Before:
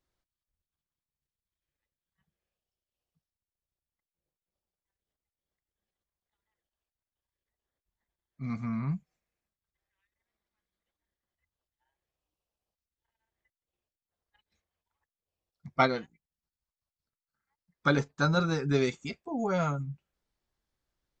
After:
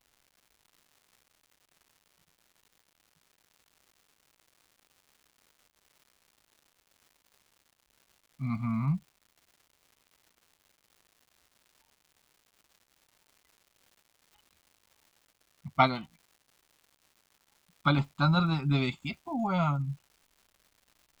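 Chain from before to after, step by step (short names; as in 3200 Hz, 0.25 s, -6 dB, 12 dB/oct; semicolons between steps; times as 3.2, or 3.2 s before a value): fixed phaser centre 1700 Hz, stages 6; crackle 300/s -55 dBFS; gain +4.5 dB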